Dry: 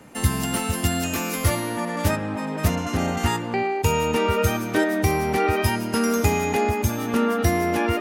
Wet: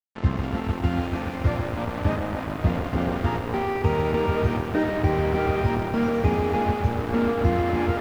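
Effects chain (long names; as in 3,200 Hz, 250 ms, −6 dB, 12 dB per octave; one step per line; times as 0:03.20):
bit reduction 4 bits
head-to-tape spacing loss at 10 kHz 45 dB
feedback echo with a band-pass in the loop 191 ms, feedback 78%, band-pass 950 Hz, level −13.5 dB
feedback echo at a low word length 140 ms, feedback 80%, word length 8 bits, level −9 dB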